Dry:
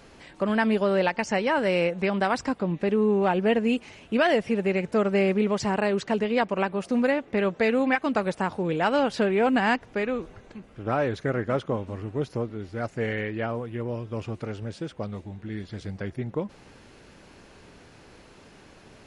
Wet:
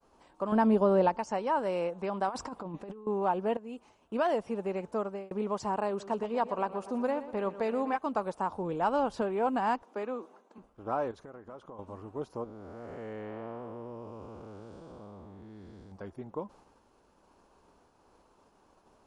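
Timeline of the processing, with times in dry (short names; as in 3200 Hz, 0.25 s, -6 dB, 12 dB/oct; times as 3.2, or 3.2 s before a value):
0.52–1.18 low shelf 500 Hz +11.5 dB
2.28–3.07 negative-ratio compressor -29 dBFS, ratio -0.5
3.57–4.14 fade in, from -15.5 dB
4.79–5.31 fade out equal-power
5.88–7.97 feedback echo 0.12 s, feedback 56%, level -14 dB
8.53–9.22 low shelf 120 Hz +11.5 dB
9.83–10.58 steep high-pass 200 Hz
11.11–11.79 compressor 10:1, threshold -34 dBFS
12.44–15.92 time blur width 0.379 s
whole clip: ten-band EQ 125 Hz -8 dB, 1000 Hz +10 dB, 2000 Hz -11 dB, 4000 Hz -4 dB; expander -45 dBFS; gain -8.5 dB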